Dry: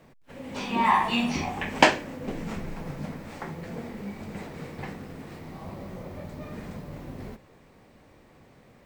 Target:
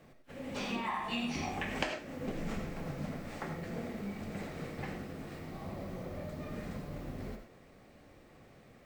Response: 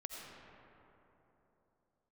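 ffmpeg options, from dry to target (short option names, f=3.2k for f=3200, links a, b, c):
-filter_complex "[0:a]acompressor=threshold=-29dB:ratio=6,bandreject=f=950:w=9.3[a];[1:a]atrim=start_sample=2205,afade=t=out:st=0.16:d=0.01,atrim=end_sample=7497[b];[a][b]afir=irnorm=-1:irlink=0,volume=2dB"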